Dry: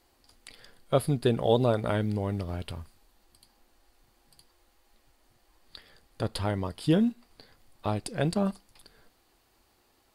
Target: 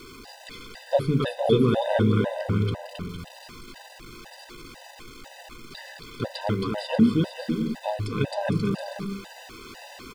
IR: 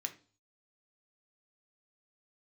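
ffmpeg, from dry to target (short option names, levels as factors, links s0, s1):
-filter_complex "[0:a]aeval=exprs='val(0)+0.5*0.0112*sgn(val(0))':c=same,aecho=1:1:270|459|591.3|683.9|748.7:0.631|0.398|0.251|0.158|0.1,asplit=2[s0][s1];[1:a]atrim=start_sample=2205,lowshelf=f=330:g=8[s2];[s1][s2]afir=irnorm=-1:irlink=0,volume=1[s3];[s0][s3]amix=inputs=2:normalize=0,acrossover=split=5400[s4][s5];[s5]acompressor=threshold=0.002:ratio=4:attack=1:release=60[s6];[s4][s6]amix=inputs=2:normalize=0,afftfilt=real='re*gt(sin(2*PI*2*pts/sr)*(1-2*mod(floor(b*sr/1024/510),2)),0)':imag='im*gt(sin(2*PI*2*pts/sr)*(1-2*mod(floor(b*sr/1024/510),2)),0)':win_size=1024:overlap=0.75"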